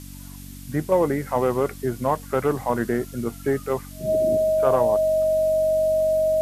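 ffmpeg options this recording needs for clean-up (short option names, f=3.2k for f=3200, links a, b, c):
-af "bandreject=f=47.3:t=h:w=4,bandreject=f=94.6:t=h:w=4,bandreject=f=141.9:t=h:w=4,bandreject=f=189.2:t=h:w=4,bandreject=f=236.5:t=h:w=4,bandreject=f=283.8:t=h:w=4,bandreject=f=630:w=30,afftdn=nr=30:nf=-39"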